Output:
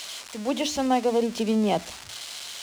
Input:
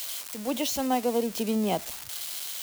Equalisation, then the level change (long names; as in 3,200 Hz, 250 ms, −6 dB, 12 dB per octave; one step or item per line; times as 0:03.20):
high-frequency loss of the air 92 metres
high-shelf EQ 6,800 Hz +5.5 dB
mains-hum notches 60/120/180/240/300 Hz
+4.0 dB